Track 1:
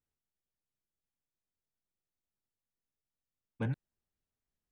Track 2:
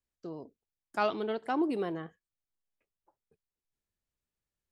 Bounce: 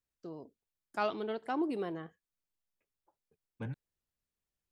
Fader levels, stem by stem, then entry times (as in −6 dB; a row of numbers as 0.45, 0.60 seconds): −6.0, −3.5 decibels; 0.00, 0.00 seconds